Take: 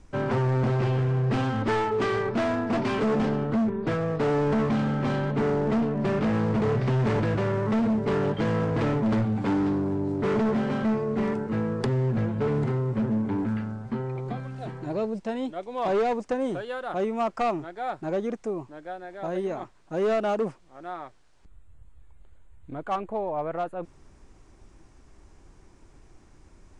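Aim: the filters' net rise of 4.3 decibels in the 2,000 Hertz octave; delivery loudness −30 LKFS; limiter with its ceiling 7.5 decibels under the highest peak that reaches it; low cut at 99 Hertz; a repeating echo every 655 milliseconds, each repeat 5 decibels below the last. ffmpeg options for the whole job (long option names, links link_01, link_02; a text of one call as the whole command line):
ffmpeg -i in.wav -af "highpass=99,equalizer=frequency=2000:width_type=o:gain=5.5,alimiter=limit=-21.5dB:level=0:latency=1,aecho=1:1:655|1310|1965|2620|3275|3930|4585:0.562|0.315|0.176|0.0988|0.0553|0.031|0.0173,volume=-1.5dB" out.wav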